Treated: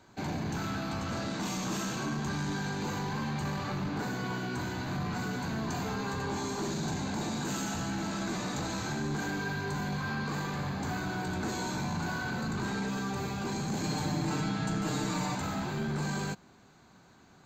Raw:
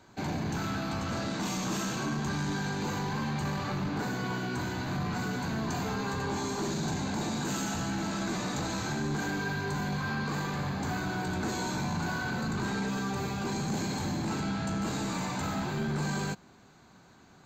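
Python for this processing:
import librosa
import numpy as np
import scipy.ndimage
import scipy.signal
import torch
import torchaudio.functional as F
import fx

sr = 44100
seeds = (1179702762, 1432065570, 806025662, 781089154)

y = fx.comb(x, sr, ms=6.6, depth=0.79, at=(13.83, 15.35))
y = y * 10.0 ** (-1.5 / 20.0)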